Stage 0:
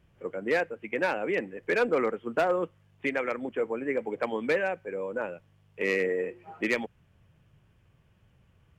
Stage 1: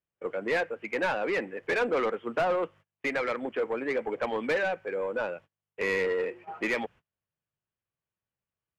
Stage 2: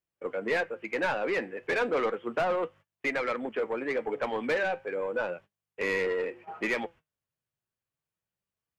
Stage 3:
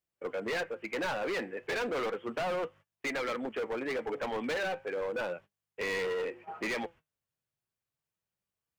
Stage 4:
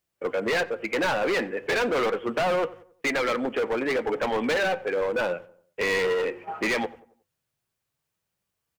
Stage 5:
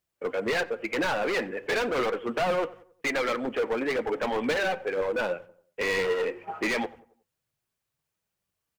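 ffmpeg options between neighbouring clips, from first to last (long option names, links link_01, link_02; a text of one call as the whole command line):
ffmpeg -i in.wav -filter_complex "[0:a]agate=range=-30dB:threshold=-49dB:ratio=16:detection=peak,asplit=2[link_01][link_02];[link_02]highpass=frequency=720:poles=1,volume=16dB,asoftclip=type=tanh:threshold=-17.5dB[link_03];[link_01][link_03]amix=inputs=2:normalize=0,lowpass=frequency=2500:poles=1,volume=-6dB,volume=-2.5dB" out.wav
ffmpeg -i in.wav -af "flanger=delay=2.7:depth=5.8:regen=79:speed=0.33:shape=triangular,volume=4dB" out.wav
ffmpeg -i in.wav -af "asoftclip=type=hard:threshold=-29.5dB,volume=-1dB" out.wav
ffmpeg -i in.wav -filter_complex "[0:a]asplit=2[link_01][link_02];[link_02]adelay=91,lowpass=frequency=1600:poles=1,volume=-18dB,asplit=2[link_03][link_04];[link_04]adelay=91,lowpass=frequency=1600:poles=1,volume=0.43,asplit=2[link_05][link_06];[link_06]adelay=91,lowpass=frequency=1600:poles=1,volume=0.43,asplit=2[link_07][link_08];[link_08]adelay=91,lowpass=frequency=1600:poles=1,volume=0.43[link_09];[link_01][link_03][link_05][link_07][link_09]amix=inputs=5:normalize=0,volume=8.5dB" out.wav
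ffmpeg -i in.wav -af "aphaser=in_gain=1:out_gain=1:delay=5:decay=0.29:speed=2:type=triangular,volume=-2.5dB" out.wav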